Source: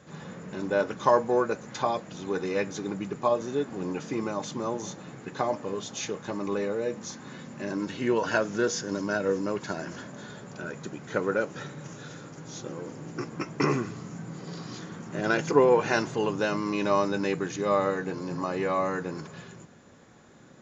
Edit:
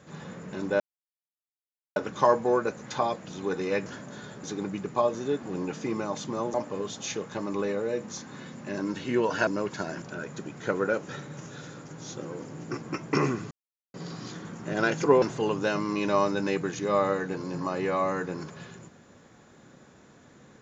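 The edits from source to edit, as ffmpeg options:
-filter_complex "[0:a]asplit=10[s0][s1][s2][s3][s4][s5][s6][s7][s8][s9];[s0]atrim=end=0.8,asetpts=PTS-STARTPTS,afade=t=out:st=0.796:d=0.004:c=hsin,apad=pad_dur=1.16[s10];[s1]atrim=start=0.8:end=2.702,asetpts=PTS-STARTPTS,afade=t=in:d=0.004:c=hsin[s11];[s2]atrim=start=9.918:end=10.492[s12];[s3]atrim=start=2.698:end=4.812[s13];[s4]atrim=start=5.468:end=8.402[s14];[s5]atrim=start=9.368:end=9.922[s15];[s6]atrim=start=10.488:end=13.98,asetpts=PTS-STARTPTS,afade=t=out:st=3.488:d=0.004:c=hsin[s16];[s7]atrim=start=13.98:end=14.41,asetpts=PTS-STARTPTS,volume=0[s17];[s8]atrim=start=14.41:end=15.692,asetpts=PTS-STARTPTS,afade=t=in:d=0.004:c=hsin[s18];[s9]atrim=start=15.988[s19];[s10][s11]concat=n=2:v=0:a=1[s20];[s20][s12]acrossfade=d=0.004:c1=hsin:c2=hsin[s21];[s21][s13]acrossfade=d=0.004:c1=hsin:c2=hsin[s22];[s22][s14]acrossfade=d=0.004:c1=hsin:c2=hsin[s23];[s23][s15]acrossfade=d=0.004:c1=hsin:c2=hsin[s24];[s16][s17][s18]concat=n=3:v=0:a=1[s25];[s24][s25]acrossfade=d=0.004:c1=hsin:c2=hsin[s26];[s26][s19]acrossfade=d=0.004:c1=hsin:c2=hsin"

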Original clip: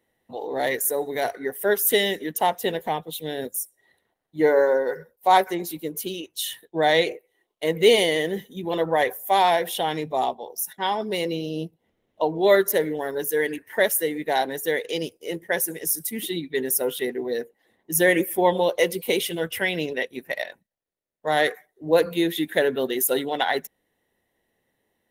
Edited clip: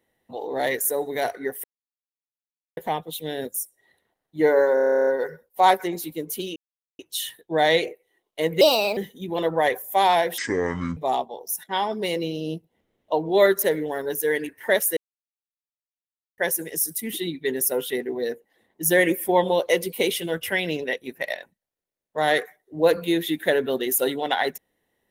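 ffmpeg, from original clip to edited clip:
-filter_complex "[0:a]asplit=21[s0][s1][s2][s3][s4][s5][s6][s7][s8][s9][s10][s11][s12][s13][s14][s15][s16][s17][s18][s19][s20];[s0]atrim=end=1.64,asetpts=PTS-STARTPTS,afade=t=out:st=1.636:d=0.004:c=hsin[s21];[s1]atrim=start=1.64:end=2.77,asetpts=PTS-STARTPTS,volume=0[s22];[s2]atrim=start=2.77:end=4.772,asetpts=PTS-STARTPTS,afade=t=in:d=0.004:c=hsin[s23];[s3]atrim=start=4.738:end=4.772[s24];[s4]atrim=start=4.738:end=4.772[s25];[s5]atrim=start=4.738:end=4.772[s26];[s6]atrim=start=4.738:end=4.772[s27];[s7]atrim=start=4.738:end=4.772[s28];[s8]atrim=start=4.738:end=4.772[s29];[s9]atrim=start=4.738:end=4.772[s30];[s10]atrim=start=4.738:end=4.772[s31];[s11]atrim=start=4.738:end=4.772[s32];[s12]atrim=start=4.738:end=4.772[s33];[s13]atrim=start=4.738:end=6.23,asetpts=PTS-STARTPTS,afade=t=out:st=1.488:d=0.004:c=hsin,apad=pad_dur=0.43[s34];[s14]atrim=start=6.23:end=7.854,asetpts=PTS-STARTPTS,afade=t=in:d=0.004:c=hsin[s35];[s15]atrim=start=7.85:end=8.32,asetpts=PTS-STARTPTS,asetrate=57771,aresample=44100,atrim=end_sample=15822,asetpts=PTS-STARTPTS[s36];[s16]atrim=start=8.316:end=9.734[s37];[s17]atrim=start=9.73:end=10.06,asetpts=PTS-STARTPTS,asetrate=24696,aresample=44100,atrim=end_sample=25987,asetpts=PTS-STARTPTS[s38];[s18]atrim=start=10.056:end=14.06,asetpts=PTS-STARTPTS,afade=t=out:st=4:d=0.004:c=hsin[s39];[s19]atrim=start=14.06:end=15.47,asetpts=PTS-STARTPTS,volume=0[s40];[s20]atrim=start=15.47,asetpts=PTS-STARTPTS,afade=t=in:d=0.004:c=hsin[s41];[s21][s22][s23]concat=n=3:v=0:a=1[s42];[s42][s24]acrossfade=d=0.004:c1=hsin:c2=hsin[s43];[s43][s25]acrossfade=d=0.004:c1=hsin:c2=hsin[s44];[s44][s26]acrossfade=d=0.004:c1=hsin:c2=hsin[s45];[s45][s27]acrossfade=d=0.004:c1=hsin:c2=hsin[s46];[s46][s28]acrossfade=d=0.004:c1=hsin:c2=hsin[s47];[s47][s29]acrossfade=d=0.004:c1=hsin:c2=hsin[s48];[s48][s30]acrossfade=d=0.004:c1=hsin:c2=hsin[s49];[s49][s31]acrossfade=d=0.004:c1=hsin:c2=hsin[s50];[s50][s32]acrossfade=d=0.004:c1=hsin:c2=hsin[s51];[s51][s33]acrossfade=d=0.004:c1=hsin:c2=hsin[s52];[s34][s35]concat=n=2:v=0:a=1[s53];[s52][s53]acrossfade=d=0.004:c1=hsin:c2=hsin[s54];[s54][s36]acrossfade=d=0.004:c1=hsin:c2=hsin[s55];[s55][s37]acrossfade=d=0.004:c1=hsin:c2=hsin[s56];[s56][s38]acrossfade=d=0.004:c1=hsin:c2=hsin[s57];[s39][s40][s41]concat=n=3:v=0:a=1[s58];[s57][s58]acrossfade=d=0.004:c1=hsin:c2=hsin"

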